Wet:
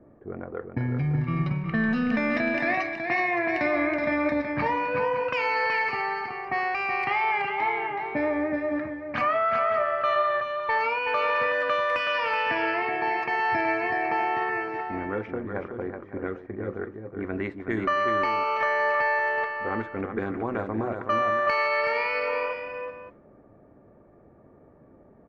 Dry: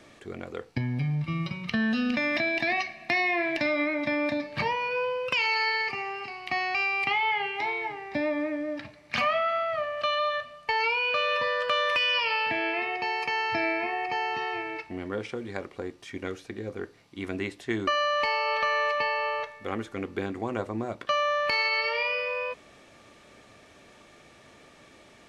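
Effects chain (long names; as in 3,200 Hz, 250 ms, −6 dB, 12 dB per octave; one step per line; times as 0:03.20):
low-pass that shuts in the quiet parts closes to 480 Hz, open at −23 dBFS
high shelf with overshoot 2,300 Hz −9 dB, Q 1.5
in parallel at −1 dB: brickwall limiter −22 dBFS, peak gain reduction 7.5 dB
on the sum: amplitude modulation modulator 220 Hz, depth 15%
on a send: multi-tap delay 374/563 ms −6/−13 dB
on the sum: level −2 dB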